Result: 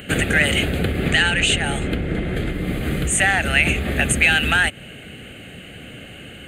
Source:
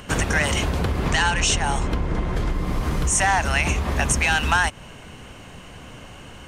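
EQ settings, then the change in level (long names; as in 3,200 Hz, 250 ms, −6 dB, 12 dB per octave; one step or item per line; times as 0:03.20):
high-pass filter 160 Hz 6 dB per octave
phaser with its sweep stopped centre 2,400 Hz, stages 4
+7.0 dB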